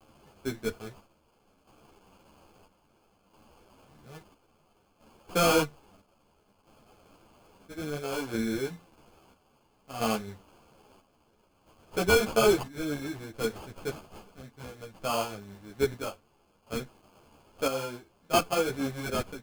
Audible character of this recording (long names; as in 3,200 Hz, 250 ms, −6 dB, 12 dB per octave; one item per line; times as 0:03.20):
a quantiser's noise floor 10 bits, dither triangular
chopped level 0.6 Hz, depth 60%, duty 60%
aliases and images of a low sample rate 1,900 Hz, jitter 0%
a shimmering, thickened sound